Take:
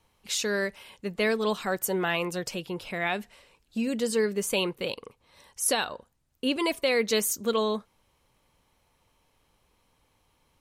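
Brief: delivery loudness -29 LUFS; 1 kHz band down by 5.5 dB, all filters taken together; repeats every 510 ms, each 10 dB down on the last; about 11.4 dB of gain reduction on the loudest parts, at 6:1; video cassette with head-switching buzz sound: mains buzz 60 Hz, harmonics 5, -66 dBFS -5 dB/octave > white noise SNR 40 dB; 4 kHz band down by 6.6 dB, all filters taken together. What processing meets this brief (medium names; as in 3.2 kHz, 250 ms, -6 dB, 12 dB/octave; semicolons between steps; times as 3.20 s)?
peaking EQ 1 kHz -7 dB; peaking EQ 4 kHz -8.5 dB; compression 6:1, threshold -35 dBFS; feedback delay 510 ms, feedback 32%, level -10 dB; mains buzz 60 Hz, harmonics 5, -66 dBFS -5 dB/octave; white noise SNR 40 dB; trim +10 dB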